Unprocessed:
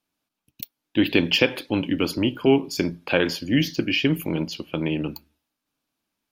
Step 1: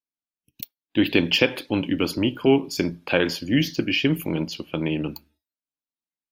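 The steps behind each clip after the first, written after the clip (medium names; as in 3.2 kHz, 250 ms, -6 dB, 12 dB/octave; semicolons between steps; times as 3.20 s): spectral noise reduction 22 dB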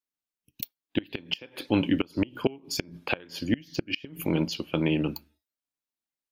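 inverted gate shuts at -11 dBFS, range -27 dB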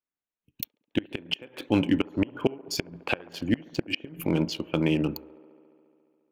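local Wiener filter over 9 samples; feedback echo behind a band-pass 70 ms, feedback 83%, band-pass 650 Hz, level -21 dB; trim +1 dB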